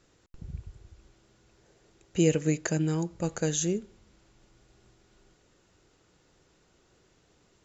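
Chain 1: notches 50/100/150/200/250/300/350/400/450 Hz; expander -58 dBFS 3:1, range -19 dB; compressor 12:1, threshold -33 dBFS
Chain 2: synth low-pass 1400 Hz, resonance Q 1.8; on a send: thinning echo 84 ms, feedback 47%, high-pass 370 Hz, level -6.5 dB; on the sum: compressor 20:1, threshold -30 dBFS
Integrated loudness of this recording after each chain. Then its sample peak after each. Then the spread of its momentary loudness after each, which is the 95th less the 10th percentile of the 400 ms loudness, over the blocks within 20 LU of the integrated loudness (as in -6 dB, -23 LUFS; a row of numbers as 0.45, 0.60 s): -39.5, -37.5 LUFS; -22.5, -20.5 dBFS; 18, 16 LU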